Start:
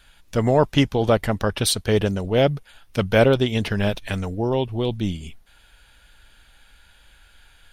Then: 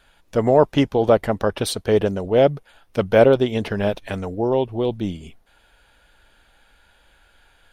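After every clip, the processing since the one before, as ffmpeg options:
-af "equalizer=f=540:w=0.43:g=10,volume=-6dB"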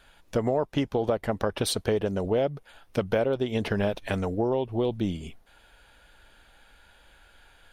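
-af "acompressor=threshold=-22dB:ratio=8"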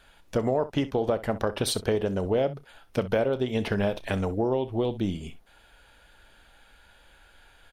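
-af "aecho=1:1:31|64:0.15|0.15"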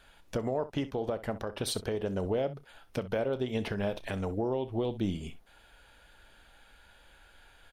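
-af "alimiter=limit=-19dB:level=0:latency=1:release=399,volume=-2dB"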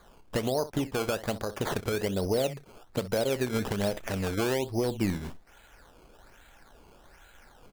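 -af "acrusher=samples=16:mix=1:aa=0.000001:lfo=1:lforange=16:lforate=1.2,volume=3dB"

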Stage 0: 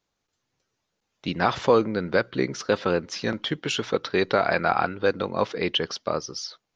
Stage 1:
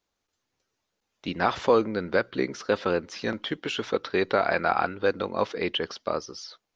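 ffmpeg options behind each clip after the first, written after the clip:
-filter_complex "[0:a]acrossover=split=3400[a][b];[b]acompressor=threshold=-38dB:ratio=4:attack=1:release=60[c];[a][c]amix=inputs=2:normalize=0,equalizer=f=140:t=o:w=0.58:g=-8,volume=-1.5dB"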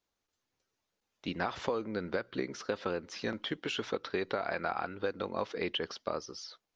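-af "acompressor=threshold=-24dB:ratio=12,volume=-4.5dB"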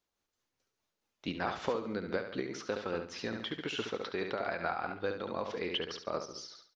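-af "aecho=1:1:70|140|210|280|350:0.447|0.183|0.0751|0.0308|0.0126,tremolo=f=4.7:d=0.35"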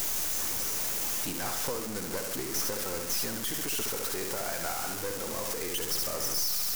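-af "aeval=exprs='val(0)+0.5*0.0266*sgn(val(0))':c=same,aexciter=amount=2.9:drive=9.5:freq=5.2k,aeval=exprs='0.211*(cos(1*acos(clip(val(0)/0.211,-1,1)))-cos(1*PI/2))+0.0422*(cos(3*acos(clip(val(0)/0.211,-1,1)))-cos(3*PI/2))+0.0299*(cos(4*acos(clip(val(0)/0.211,-1,1)))-cos(4*PI/2))+0.0188*(cos(5*acos(clip(val(0)/0.211,-1,1)))-cos(5*PI/2))+0.00531*(cos(8*acos(clip(val(0)/0.211,-1,1)))-cos(8*PI/2))':c=same,volume=-3.5dB"

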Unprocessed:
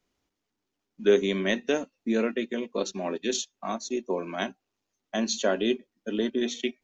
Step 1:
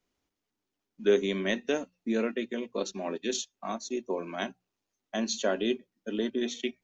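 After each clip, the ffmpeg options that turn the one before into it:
-af "bandreject=f=60:t=h:w=6,bandreject=f=120:t=h:w=6,bandreject=f=180:t=h:w=6,volume=-3dB"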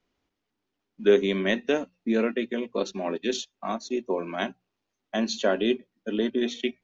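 -af "lowpass=4.5k,volume=4.5dB"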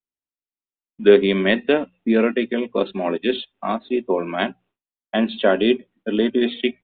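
-af "agate=range=-33dB:threshold=-55dB:ratio=3:detection=peak,aresample=8000,aresample=44100,volume=7dB"

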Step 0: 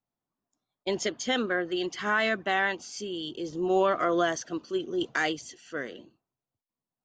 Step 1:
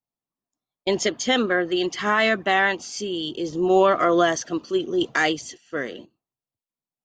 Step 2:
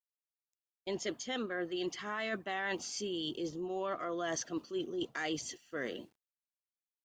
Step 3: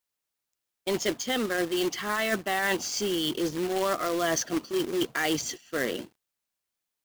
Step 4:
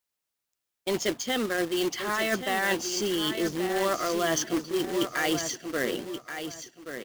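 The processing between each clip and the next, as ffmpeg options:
-af "bandreject=f=1.5k:w=17,agate=range=-12dB:threshold=-48dB:ratio=16:detection=peak,volume=7dB"
-af "acrusher=bits=10:mix=0:aa=0.000001,areverse,acompressor=threshold=-28dB:ratio=10,areverse,volume=-5.5dB"
-af "acrusher=bits=2:mode=log:mix=0:aa=0.000001,volume=9dB"
-af "aecho=1:1:1129|2258|3387:0.355|0.0852|0.0204"

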